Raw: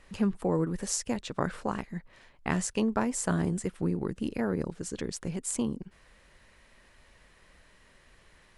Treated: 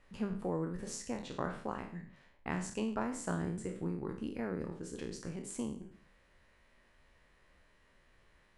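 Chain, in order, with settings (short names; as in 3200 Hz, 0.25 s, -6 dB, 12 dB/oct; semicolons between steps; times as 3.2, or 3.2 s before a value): spectral trails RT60 0.52 s; high shelf 4100 Hz -8 dB; notches 50/100/150/200 Hz; gain -8.5 dB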